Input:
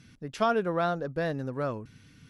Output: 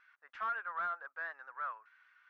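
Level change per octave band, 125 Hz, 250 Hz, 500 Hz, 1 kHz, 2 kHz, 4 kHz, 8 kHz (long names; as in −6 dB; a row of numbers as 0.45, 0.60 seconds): below −40 dB, below −35 dB, −25.5 dB, −7.0 dB, −2.0 dB, below −15 dB, can't be measured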